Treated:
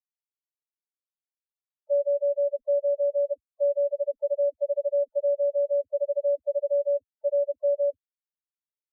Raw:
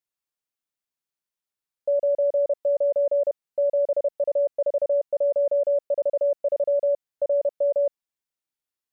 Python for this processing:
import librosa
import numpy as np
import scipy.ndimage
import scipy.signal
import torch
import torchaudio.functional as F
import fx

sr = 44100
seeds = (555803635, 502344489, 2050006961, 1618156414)

y = fx.dispersion(x, sr, late='lows', ms=77.0, hz=460.0)
y = fx.spec_topn(y, sr, count=2)
y = fx.dereverb_blind(y, sr, rt60_s=0.9)